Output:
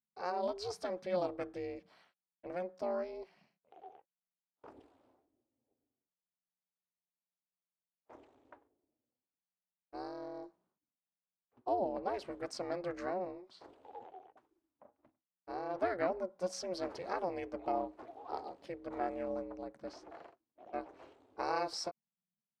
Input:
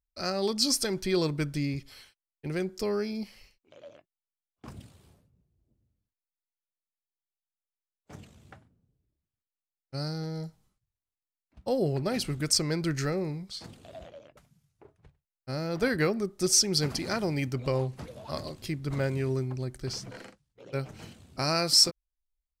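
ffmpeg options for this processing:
-af "aeval=exprs='val(0)*sin(2*PI*180*n/s)':c=same,bandpass=f=760:t=q:w=1.4:csg=0,volume=1dB"

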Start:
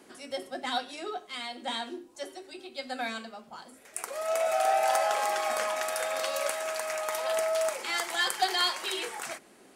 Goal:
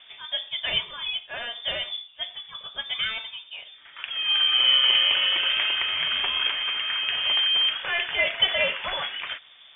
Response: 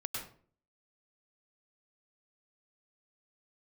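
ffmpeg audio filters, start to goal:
-filter_complex "[0:a]lowpass=f=3.2k:t=q:w=0.5098,lowpass=f=3.2k:t=q:w=0.6013,lowpass=f=3.2k:t=q:w=0.9,lowpass=f=3.2k:t=q:w=2.563,afreqshift=-3800,asettb=1/sr,asplit=3[a][b][c];[a]atrim=end=4.584[d];[b]atrim=start=4.58:end=5.48,asetpts=PTS-STARTPTS,afade=t=in:d=0.004:c=qsin,afade=t=out:st=0.896:d=0.004:c=qsin,aeval=exprs='val(0)+0.00251*sin(2*PI*540*n/s)':c=same[e];[c]atrim=start=5.476[f];[d][e]acrossfade=d=0.004:c1=hsin:c2=qsin[g];[g][f]acrossfade=d=0.004:c1=qsin:c2=hsin,volume=6dB"

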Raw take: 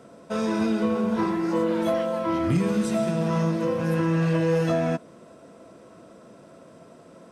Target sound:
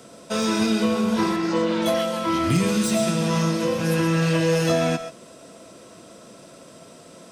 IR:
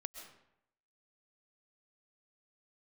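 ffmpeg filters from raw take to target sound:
-filter_complex "[0:a]asettb=1/sr,asplit=3[a][b][c];[a]atrim=end=1.364[d];[b]atrim=start=1.36:end=1.86,asetpts=PTS-STARTPTS,afade=t=in:d=0.004:c=qsin,afade=t=out:st=0.496:d=0.004:c=qsin,lowpass=5.3k[e];[c]atrim=start=1.856[f];[d][e]acrossfade=d=0.004:c1=hsin:c2=qsin[g];[g][f]acrossfade=d=0.004:c1=qsin:c2=hsin,acrossover=split=330|2800[h][i][j];[j]aeval=exprs='0.0473*sin(PI/2*2.51*val(0)/0.0473)':c=same[k];[h][i][k]amix=inputs=3:normalize=0[l];[1:a]atrim=start_sample=2205,afade=t=out:st=0.19:d=0.01,atrim=end_sample=8820[m];[l][m]afir=irnorm=-1:irlink=0,volume=6dB"

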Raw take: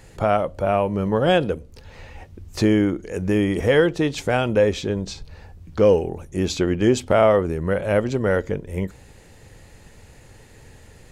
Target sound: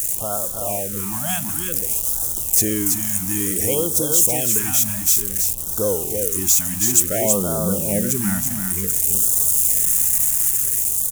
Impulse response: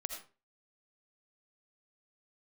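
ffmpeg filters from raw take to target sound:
-filter_complex "[0:a]aeval=exprs='val(0)+0.5*0.0398*sgn(val(0))':c=same,highshelf=f=2.5k:g=5.5,dynaudnorm=f=390:g=7:m=6dB,asettb=1/sr,asplit=3[a][b][c];[a]atrim=end=7.254[d];[b]atrim=start=7.25:end=8.48,asetpts=PTS-STARTPTS,afade=t=in:d=0.004:c=qsin,afade=t=out:st=1.226:d=0.004:c=qsin,equalizer=f=190:t=o:w=0.74:g=12.5[e];[c]atrim=start=8.476[f];[d][e]acrossfade=d=0.004:c1=hsin:c2=qsin[g];[g][f]acrossfade=d=0.004:c1=qsin:c2=hsin,asplit=2[h][i];[i]aecho=0:1:328:0.562[j];[h][j]amix=inputs=2:normalize=0,aexciter=amount=10.2:drive=9.1:freq=6.4k,acrusher=bits=4:mix=0:aa=0.000001,afftfilt=real='re*(1-between(b*sr/1024,400*pow(2300/400,0.5+0.5*sin(2*PI*0.56*pts/sr))/1.41,400*pow(2300/400,0.5+0.5*sin(2*PI*0.56*pts/sr))*1.41))':imag='im*(1-between(b*sr/1024,400*pow(2300/400,0.5+0.5*sin(2*PI*0.56*pts/sr))/1.41,400*pow(2300/400,0.5+0.5*sin(2*PI*0.56*pts/sr))*1.41))':win_size=1024:overlap=0.75,volume=-10.5dB"

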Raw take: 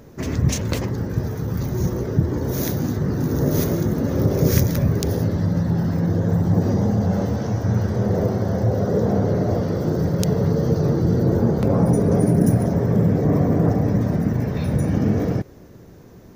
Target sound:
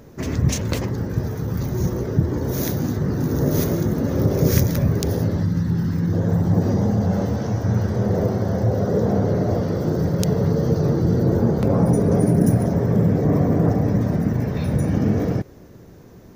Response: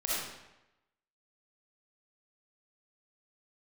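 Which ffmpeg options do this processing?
-filter_complex "[0:a]asettb=1/sr,asplit=3[a][b][c];[a]atrim=end=5.434[d];[b]atrim=start=5.43:end=6.13,asetpts=PTS-STARTPTS,afade=t=in:d=0.004:c=qsin,afade=t=out:st=0.696:d=0.004:c=qsin,equalizer=f=640:w=1.6:g=-13[e];[c]atrim=start=6.126[f];[d][e]acrossfade=d=0.004:c1=hsin:c2=qsin[g];[g][f]acrossfade=d=0.004:c1=qsin:c2=hsin"

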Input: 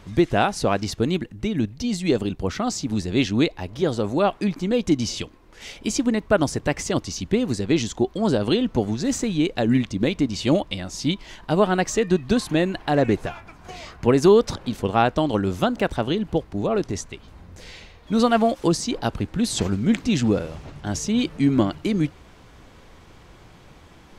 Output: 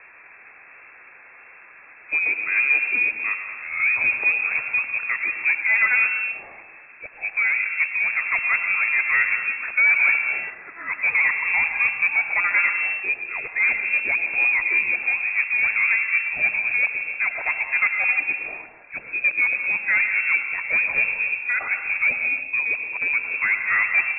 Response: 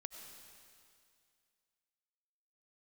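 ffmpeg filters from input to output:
-filter_complex "[0:a]areverse,asplit=2[a][b];[b]highpass=f=720:p=1,volume=21dB,asoftclip=type=tanh:threshold=-4.5dB[c];[a][c]amix=inputs=2:normalize=0,lowpass=f=1k:p=1,volume=-6dB[d];[1:a]atrim=start_sample=2205,afade=t=out:st=0.4:d=0.01,atrim=end_sample=18081[e];[d][e]afir=irnorm=-1:irlink=0,lowpass=f=2.3k:t=q:w=0.5098,lowpass=f=2.3k:t=q:w=0.6013,lowpass=f=2.3k:t=q:w=0.9,lowpass=f=2.3k:t=q:w=2.563,afreqshift=-2700"

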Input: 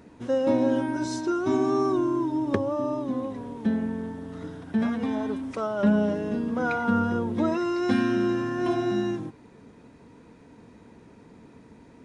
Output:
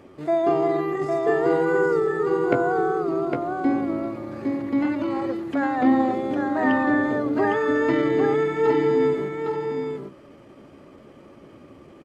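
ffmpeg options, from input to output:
-filter_complex "[0:a]acrossover=split=2800[a][b];[b]acompressor=threshold=-54dB:ratio=4:attack=1:release=60[c];[a][c]amix=inputs=2:normalize=0,highshelf=f=3.4k:g=-7.5,bandreject=f=50:t=h:w=6,bandreject=f=100:t=h:w=6,bandreject=f=150:t=h:w=6,bandreject=f=200:t=h:w=6,bandreject=f=250:t=h:w=6,asetrate=55563,aresample=44100,atempo=0.793701,aecho=1:1:807:0.631,volume=3dB"

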